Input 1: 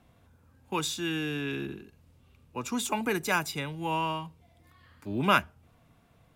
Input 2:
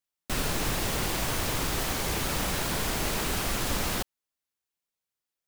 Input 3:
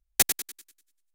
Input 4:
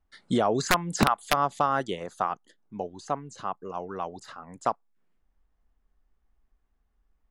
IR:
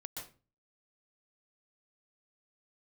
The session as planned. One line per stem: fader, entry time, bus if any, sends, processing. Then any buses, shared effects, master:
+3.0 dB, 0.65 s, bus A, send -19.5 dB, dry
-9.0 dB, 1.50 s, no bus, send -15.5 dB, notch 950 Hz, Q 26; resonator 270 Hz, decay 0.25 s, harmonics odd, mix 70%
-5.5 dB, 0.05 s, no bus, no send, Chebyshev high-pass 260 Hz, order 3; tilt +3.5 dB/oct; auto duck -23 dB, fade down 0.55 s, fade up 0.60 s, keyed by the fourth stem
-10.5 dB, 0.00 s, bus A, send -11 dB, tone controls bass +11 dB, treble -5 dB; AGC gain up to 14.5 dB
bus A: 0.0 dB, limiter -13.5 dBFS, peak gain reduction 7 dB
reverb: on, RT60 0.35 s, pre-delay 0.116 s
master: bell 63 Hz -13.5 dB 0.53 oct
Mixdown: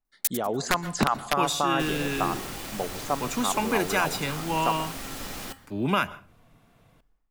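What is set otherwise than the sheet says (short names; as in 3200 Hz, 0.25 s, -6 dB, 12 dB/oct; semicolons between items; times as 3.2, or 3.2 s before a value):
stem 2 -9.0 dB -> +1.5 dB; stem 4: missing tone controls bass +11 dB, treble -5 dB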